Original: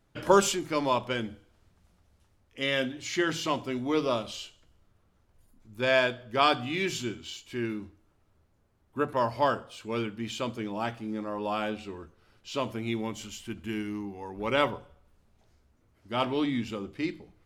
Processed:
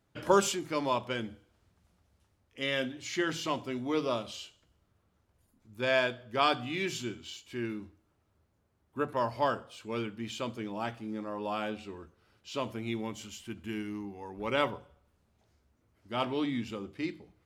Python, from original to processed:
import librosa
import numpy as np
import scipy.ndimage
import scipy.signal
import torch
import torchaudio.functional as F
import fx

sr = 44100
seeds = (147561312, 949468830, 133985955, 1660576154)

y = scipy.signal.sosfilt(scipy.signal.butter(2, 48.0, 'highpass', fs=sr, output='sos'), x)
y = F.gain(torch.from_numpy(y), -3.5).numpy()